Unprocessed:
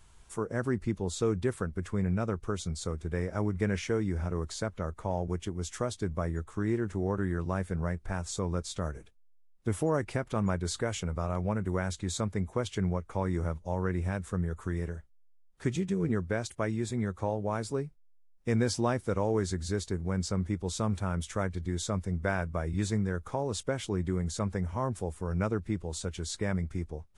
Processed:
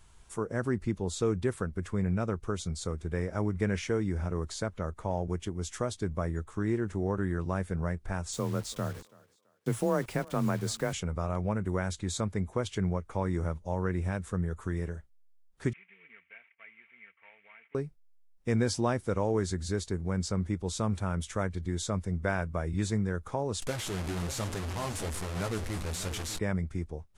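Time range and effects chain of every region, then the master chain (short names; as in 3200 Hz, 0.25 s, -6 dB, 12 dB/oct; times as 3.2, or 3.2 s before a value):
8.33–10.93 frequency shift +25 Hz + requantised 8-bit, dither none + thinning echo 0.332 s, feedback 33%, high-pass 280 Hz, level -22 dB
15.73–17.75 CVSD 16 kbps + band-pass 2200 Hz, Q 9.9 + comb 4.4 ms, depth 45%
23.62–26.39 delta modulation 64 kbps, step -26.5 dBFS + flange 1.1 Hz, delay 6.5 ms, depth 7.7 ms, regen -39% + echo 0.594 s -12.5 dB
whole clip: dry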